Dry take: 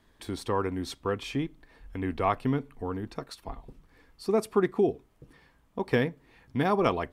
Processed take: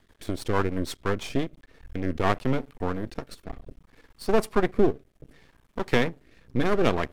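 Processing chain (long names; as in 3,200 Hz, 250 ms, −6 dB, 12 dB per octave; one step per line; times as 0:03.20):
half-wave rectification
rotating-speaker cabinet horn 6.3 Hz, later 0.65 Hz, at 0:01.27
level +8.5 dB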